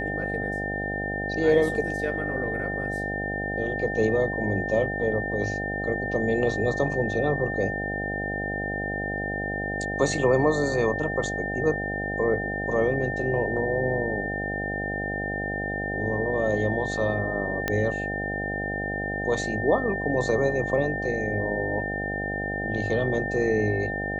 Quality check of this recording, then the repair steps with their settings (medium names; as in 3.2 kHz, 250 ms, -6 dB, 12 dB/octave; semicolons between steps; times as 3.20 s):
buzz 50 Hz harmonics 16 -32 dBFS
whine 1.8 kHz -30 dBFS
17.68 s: pop -10 dBFS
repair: de-click; de-hum 50 Hz, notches 16; band-stop 1.8 kHz, Q 30